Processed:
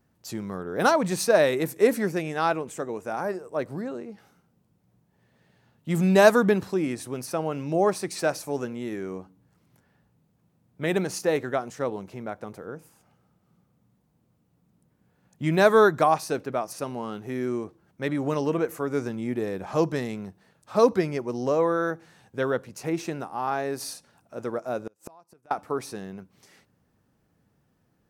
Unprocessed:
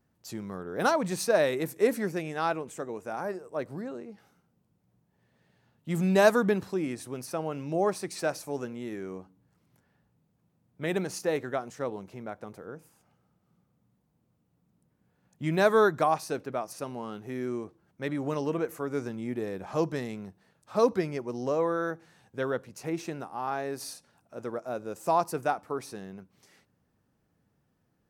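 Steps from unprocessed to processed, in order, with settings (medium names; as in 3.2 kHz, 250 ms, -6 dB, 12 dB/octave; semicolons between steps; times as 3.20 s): 24.83–25.51 s: inverted gate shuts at -28 dBFS, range -33 dB; trim +4.5 dB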